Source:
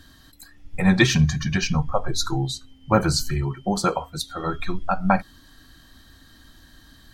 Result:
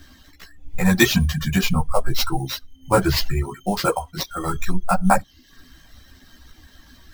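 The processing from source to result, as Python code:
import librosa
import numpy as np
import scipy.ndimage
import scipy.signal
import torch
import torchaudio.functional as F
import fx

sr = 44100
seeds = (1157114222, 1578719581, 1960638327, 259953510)

y = fx.sample_hold(x, sr, seeds[0], rate_hz=9500.0, jitter_pct=0)
y = fx.chorus_voices(y, sr, voices=4, hz=0.74, base_ms=14, depth_ms=2.8, mix_pct=50)
y = fx.dereverb_blind(y, sr, rt60_s=0.51)
y = y * 10.0 ** (5.5 / 20.0)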